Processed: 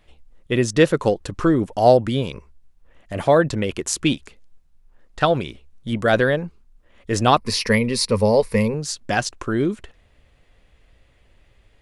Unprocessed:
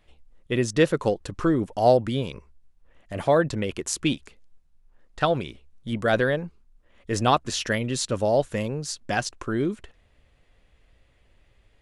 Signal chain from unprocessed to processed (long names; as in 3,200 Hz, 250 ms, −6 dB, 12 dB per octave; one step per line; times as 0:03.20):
0:07.37–0:08.74: EQ curve with evenly spaced ripples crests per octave 0.89, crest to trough 13 dB
level +4.5 dB